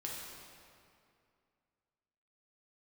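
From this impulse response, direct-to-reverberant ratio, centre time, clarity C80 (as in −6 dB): −4.0 dB, 118 ms, 1.0 dB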